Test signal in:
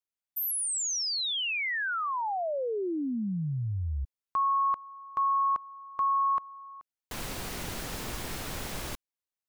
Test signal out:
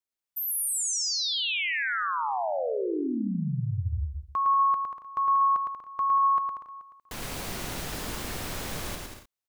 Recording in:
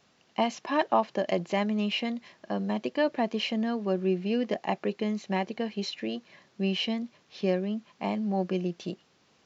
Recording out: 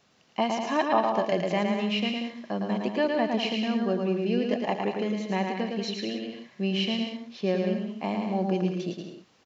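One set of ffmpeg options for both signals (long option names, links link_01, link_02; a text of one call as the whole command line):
ffmpeg -i in.wav -af "aecho=1:1:110|187|240.9|278.6|305:0.631|0.398|0.251|0.158|0.1" out.wav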